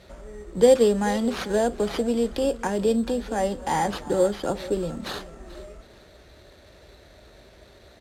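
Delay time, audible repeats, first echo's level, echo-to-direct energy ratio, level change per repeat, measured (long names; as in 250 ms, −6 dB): 435 ms, 2, −18.0 dB, −17.5 dB, −10.0 dB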